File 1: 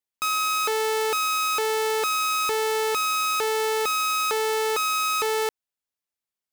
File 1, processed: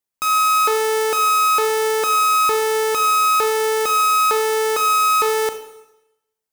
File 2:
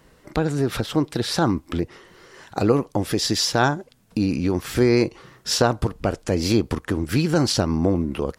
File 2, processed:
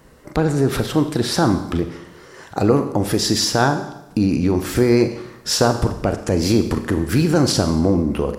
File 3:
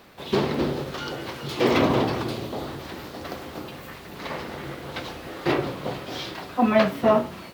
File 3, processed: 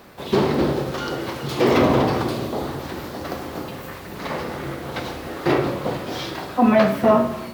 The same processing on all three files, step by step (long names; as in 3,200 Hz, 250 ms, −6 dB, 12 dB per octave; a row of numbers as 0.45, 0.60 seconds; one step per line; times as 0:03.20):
parametric band 3,200 Hz −4.5 dB 1.5 octaves
in parallel at −1.5 dB: brickwall limiter −16 dBFS
on the sum: four-comb reverb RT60 0.88 s, combs from 30 ms, DRR 8 dB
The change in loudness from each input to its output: +7.0, +3.5, +4.0 LU